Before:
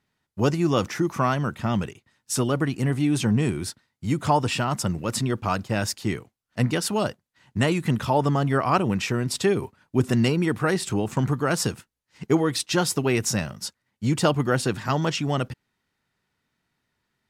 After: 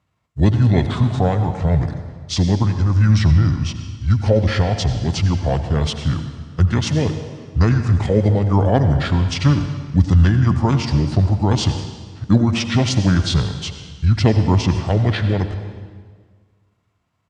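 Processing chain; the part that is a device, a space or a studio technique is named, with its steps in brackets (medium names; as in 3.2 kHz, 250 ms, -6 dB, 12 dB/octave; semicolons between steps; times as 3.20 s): high-pass 71 Hz 24 dB/octave; monster voice (pitch shift -5.5 st; formant shift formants -3 st; bass shelf 200 Hz +7 dB; reverberation RT60 1.6 s, pre-delay 74 ms, DRR 8 dB); 3.31–4.11 s: treble shelf 7.6 kHz -7.5 dB; trim +3 dB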